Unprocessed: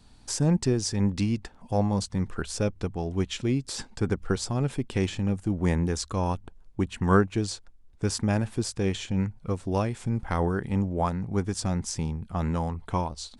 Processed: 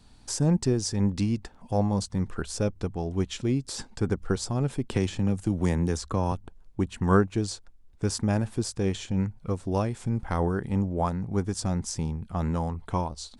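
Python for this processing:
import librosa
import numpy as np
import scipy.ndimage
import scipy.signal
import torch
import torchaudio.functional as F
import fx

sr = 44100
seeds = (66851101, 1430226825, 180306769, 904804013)

y = fx.dynamic_eq(x, sr, hz=2400.0, q=0.95, threshold_db=-47.0, ratio=4.0, max_db=-4)
y = fx.band_squash(y, sr, depth_pct=70, at=(4.89, 6.32))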